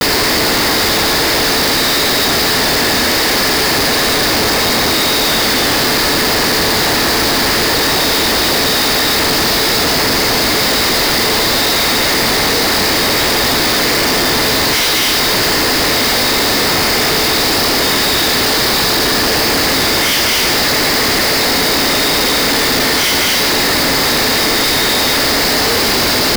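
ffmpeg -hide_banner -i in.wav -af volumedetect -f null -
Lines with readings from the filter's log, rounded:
mean_volume: -13.0 dB
max_volume: -11.0 dB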